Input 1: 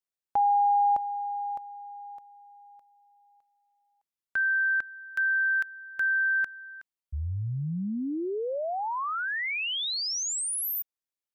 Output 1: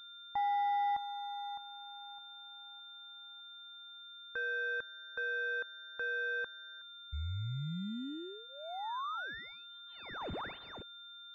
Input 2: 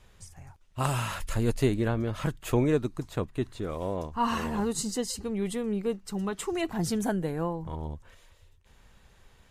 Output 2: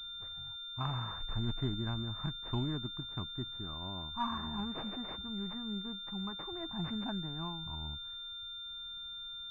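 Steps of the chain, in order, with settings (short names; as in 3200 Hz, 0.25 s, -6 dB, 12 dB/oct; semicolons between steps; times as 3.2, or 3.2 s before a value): whine 1400 Hz -47 dBFS; fixed phaser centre 1200 Hz, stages 4; pulse-width modulation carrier 3600 Hz; gain -6.5 dB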